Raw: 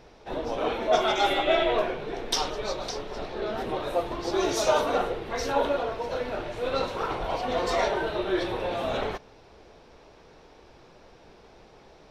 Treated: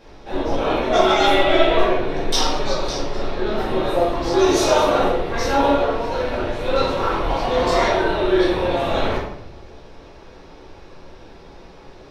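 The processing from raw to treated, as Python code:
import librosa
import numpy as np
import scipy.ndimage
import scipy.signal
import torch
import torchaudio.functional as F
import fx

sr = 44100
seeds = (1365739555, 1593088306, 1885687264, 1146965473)

p1 = np.clip(x, -10.0 ** (-19.5 / 20.0), 10.0 ** (-19.5 / 20.0))
p2 = x + (p1 * librosa.db_to_amplitude(-10.5))
p3 = fx.room_shoebox(p2, sr, seeds[0], volume_m3=200.0, walls='mixed', distance_m=2.3)
y = p3 * librosa.db_to_amplitude(-2.0)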